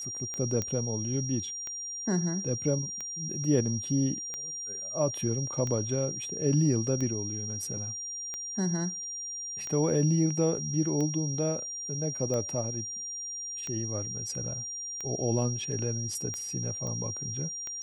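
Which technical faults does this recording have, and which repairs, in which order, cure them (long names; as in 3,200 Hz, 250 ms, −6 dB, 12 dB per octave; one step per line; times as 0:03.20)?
scratch tick 45 rpm −22 dBFS
whistle 5,700 Hz −35 dBFS
0:00.62: click −17 dBFS
0:16.87: click −24 dBFS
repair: click removal
notch filter 5,700 Hz, Q 30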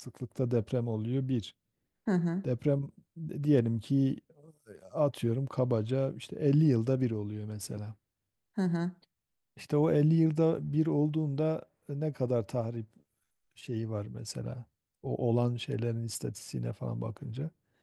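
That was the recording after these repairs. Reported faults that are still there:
0:00.62: click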